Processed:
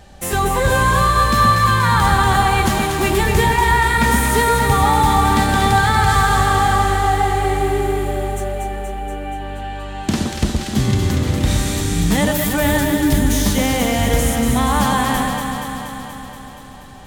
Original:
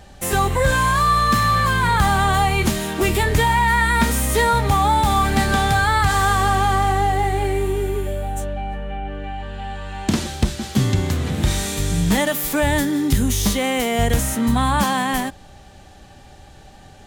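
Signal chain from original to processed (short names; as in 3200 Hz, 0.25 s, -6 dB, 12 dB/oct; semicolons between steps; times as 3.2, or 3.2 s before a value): echo with dull and thin repeats by turns 0.119 s, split 1300 Hz, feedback 83%, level -3 dB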